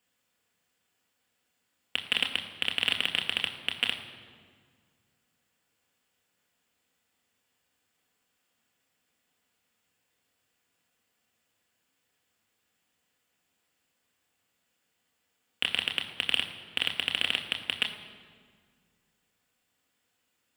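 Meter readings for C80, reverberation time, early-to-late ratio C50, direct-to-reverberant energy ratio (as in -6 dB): 10.0 dB, 1.8 s, 9.0 dB, 2.5 dB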